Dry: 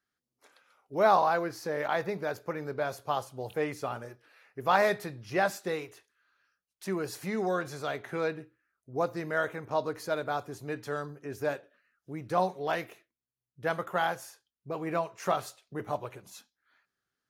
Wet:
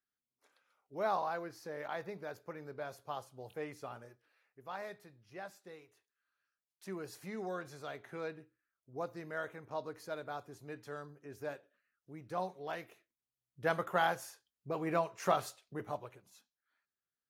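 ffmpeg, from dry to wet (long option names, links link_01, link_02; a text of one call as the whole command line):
ffmpeg -i in.wav -af "volume=6.5dB,afade=type=out:start_time=4.06:duration=0.58:silence=0.375837,afade=type=in:start_time=5.84:duration=1.07:silence=0.354813,afade=type=in:start_time=12.85:duration=0.83:silence=0.375837,afade=type=out:start_time=15.47:duration=0.77:silence=0.266073" out.wav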